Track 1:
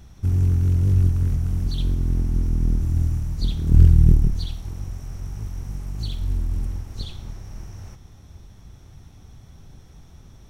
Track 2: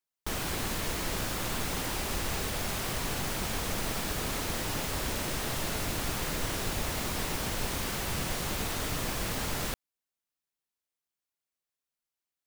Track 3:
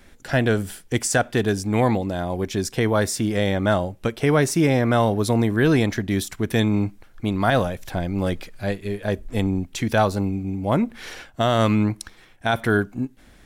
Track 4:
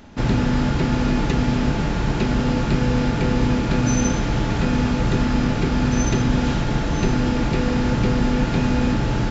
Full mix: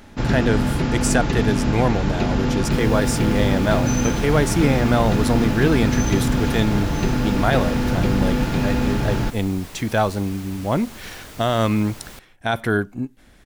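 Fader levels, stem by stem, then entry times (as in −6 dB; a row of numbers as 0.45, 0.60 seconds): muted, −7.0 dB, −0.5 dB, −1.0 dB; muted, 2.45 s, 0.00 s, 0.00 s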